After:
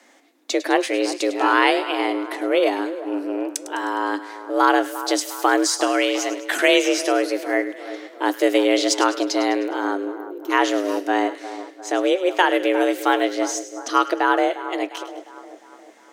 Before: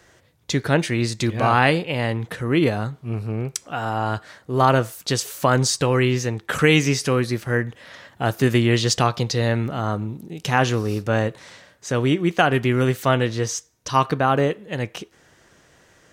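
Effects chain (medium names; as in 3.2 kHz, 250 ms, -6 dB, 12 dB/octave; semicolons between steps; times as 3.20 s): 5.87–6.68 s: tilt shelf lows -3.5 dB; 10.13–10.50 s: time-frequency box 310–12000 Hz -20 dB; frequency shift +190 Hz; two-band feedback delay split 1.5 kHz, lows 353 ms, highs 103 ms, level -13 dB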